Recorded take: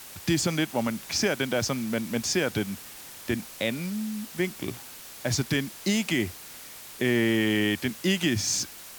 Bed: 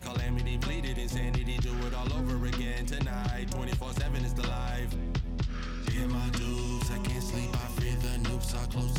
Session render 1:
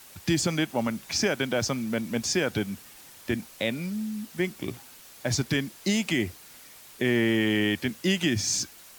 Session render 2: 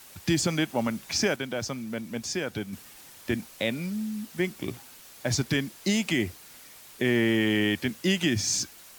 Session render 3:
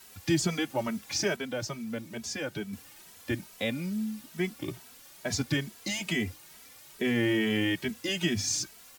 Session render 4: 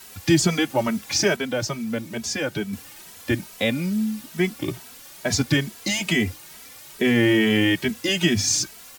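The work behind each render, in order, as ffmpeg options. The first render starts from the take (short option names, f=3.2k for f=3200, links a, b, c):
-af "afftdn=nr=6:nf=-44"
-filter_complex "[0:a]asplit=3[a][b][c];[a]atrim=end=1.362[d];[b]atrim=start=1.358:end=2.732,asetpts=PTS-STARTPTS,volume=-5dB[e];[c]atrim=start=2.728[f];[d][e]acrossfade=d=0.004:c1=hsin:c2=hsin[g];[g][f]acrossfade=d=0.004:c1=hsin:c2=hsin"
-filter_complex "[0:a]asplit=2[a][b];[b]adelay=2.7,afreqshift=2.3[c];[a][c]amix=inputs=2:normalize=1"
-af "volume=8.5dB"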